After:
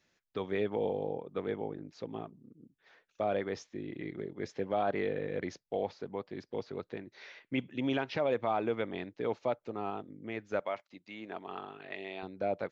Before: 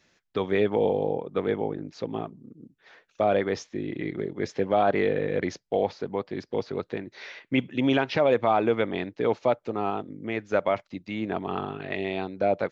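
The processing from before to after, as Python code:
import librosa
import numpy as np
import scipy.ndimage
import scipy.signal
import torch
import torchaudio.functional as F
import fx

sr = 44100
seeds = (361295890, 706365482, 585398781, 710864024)

y = fx.highpass(x, sr, hz=520.0, slope=6, at=(10.6, 12.23))
y = y * librosa.db_to_amplitude(-9.0)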